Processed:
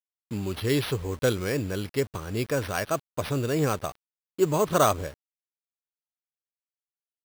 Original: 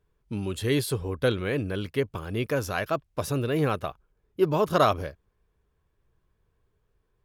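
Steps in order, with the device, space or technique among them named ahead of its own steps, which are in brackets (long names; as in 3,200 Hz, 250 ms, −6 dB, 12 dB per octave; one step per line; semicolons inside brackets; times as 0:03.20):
early 8-bit sampler (sample-rate reduction 7,300 Hz, jitter 0%; bit reduction 8 bits)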